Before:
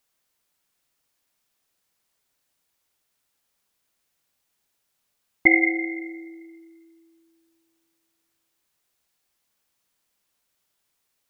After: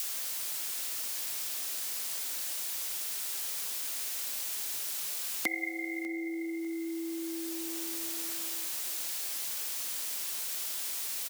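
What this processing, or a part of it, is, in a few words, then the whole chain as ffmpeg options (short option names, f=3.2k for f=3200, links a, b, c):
upward and downward compression: -af "acompressor=mode=upward:threshold=-26dB:ratio=2.5,acompressor=threshold=-40dB:ratio=6,highpass=f=200:w=0.5412,highpass=f=200:w=1.3066,highshelf=f=2.1k:g=12,aecho=1:1:597|1194|1791:0.0891|0.0374|0.0157,adynamicequalizer=threshold=0.00158:dfrequency=540:dqfactor=0.81:tfrequency=540:tqfactor=0.81:attack=5:release=100:ratio=0.375:range=3:mode=boostabove:tftype=bell,volume=1.5dB"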